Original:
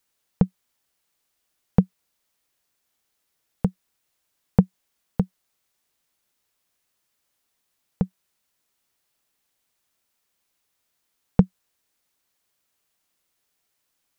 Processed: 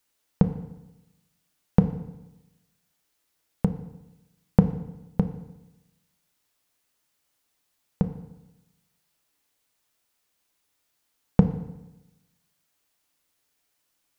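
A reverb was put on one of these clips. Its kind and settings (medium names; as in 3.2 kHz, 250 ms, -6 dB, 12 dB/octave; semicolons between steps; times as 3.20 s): FDN reverb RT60 0.98 s, low-frequency decay 1.1×, high-frequency decay 0.9×, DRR 7.5 dB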